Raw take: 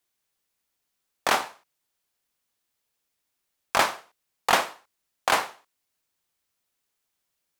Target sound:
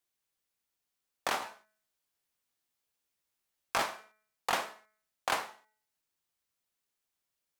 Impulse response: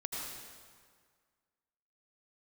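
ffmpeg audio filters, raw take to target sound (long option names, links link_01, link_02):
-filter_complex "[0:a]asettb=1/sr,asplit=3[link_01][link_02][link_03];[link_01]atrim=end=1.404[link_04];[link_02]atrim=start=1.4:end=3.82,asetpts=PTS-STARTPTS,afade=type=in:duration=0.004:curve=qsin,afade=type=out:start_time=2.416:duration=0.004:curve=qsin,asplit=2[link_05][link_06];[link_06]adelay=16,volume=-4dB[link_07];[link_05][link_07]amix=inputs=2:normalize=0,atrim=end_sample=106722[link_08];[link_03]atrim=start=3.816[link_09];[link_04][link_08]acrossfade=duration=0.004:curve1=hsin:curve2=qsin[link_10];[link_10][link_09]acrossfade=duration=0.004:curve1=qsin:curve2=hsin,bandreject=frequency=215.3:width_type=h:width=4,bandreject=frequency=430.6:width_type=h:width=4,bandreject=frequency=645.9:width_type=h:width=4,bandreject=frequency=861.2:width_type=h:width=4,bandreject=frequency=1076.5:width_type=h:width=4,bandreject=frequency=1291.8:width_type=h:width=4,bandreject=frequency=1507.1:width_type=h:width=4,bandreject=frequency=1722.4:width_type=h:width=4,bandreject=frequency=1937.7:width_type=h:width=4,bandreject=frequency=2153:width_type=h:width=4,bandreject=frequency=2368.3:width_type=h:width=4,alimiter=limit=-10.5dB:level=0:latency=1:release=241,volume=-6.5dB"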